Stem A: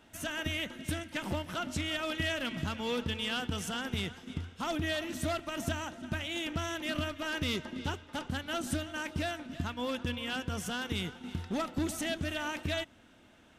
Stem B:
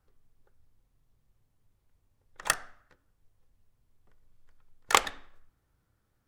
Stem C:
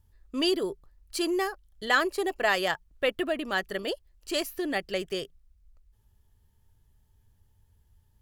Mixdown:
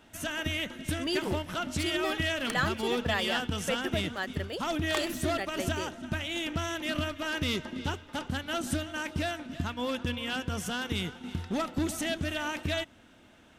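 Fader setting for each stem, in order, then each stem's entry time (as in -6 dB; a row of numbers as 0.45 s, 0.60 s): +2.5 dB, -13.0 dB, -6.0 dB; 0.00 s, 0.00 s, 0.65 s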